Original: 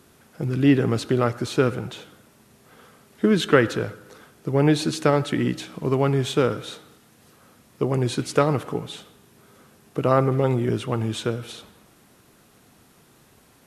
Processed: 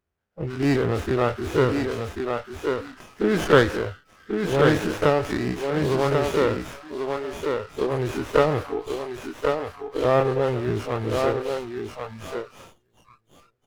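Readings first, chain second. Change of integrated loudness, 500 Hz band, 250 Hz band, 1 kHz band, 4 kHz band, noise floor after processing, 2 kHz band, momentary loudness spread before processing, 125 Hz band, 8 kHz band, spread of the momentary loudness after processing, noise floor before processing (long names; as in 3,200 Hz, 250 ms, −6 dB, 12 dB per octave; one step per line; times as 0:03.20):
−1.5 dB, +2.0 dB, −2.5 dB, +2.0 dB, −2.0 dB, −68 dBFS, +2.0 dB, 15 LU, −3.5 dB, −4.0 dB, 13 LU, −56 dBFS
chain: every bin's largest magnitude spread in time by 60 ms
octave-band graphic EQ 125/250/1,000/8,000 Hz −11/−10/−4/−11 dB
on a send: repeating echo 1,090 ms, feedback 20%, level −4.5 dB
on the sum: noise reduction from a noise print of the clip's start 28 dB
parametric band 65 Hz +11 dB 2.7 octaves
windowed peak hold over 9 samples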